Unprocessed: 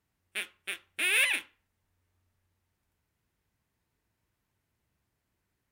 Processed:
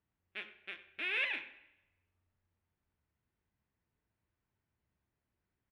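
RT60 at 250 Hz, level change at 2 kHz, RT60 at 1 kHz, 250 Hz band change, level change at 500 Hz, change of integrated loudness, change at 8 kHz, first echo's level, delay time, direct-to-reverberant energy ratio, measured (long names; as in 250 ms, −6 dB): 0.90 s, −8.0 dB, 0.95 s, −5.5 dB, −5.5 dB, −9.5 dB, below −35 dB, −18.0 dB, 96 ms, 10.0 dB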